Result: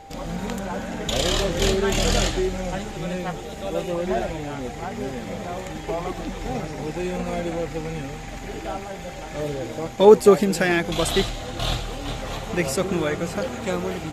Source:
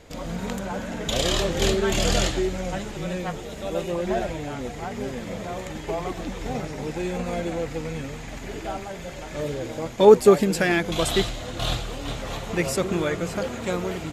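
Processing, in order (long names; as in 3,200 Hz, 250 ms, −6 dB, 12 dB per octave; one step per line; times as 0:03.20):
steady tone 790 Hz −43 dBFS
level +1 dB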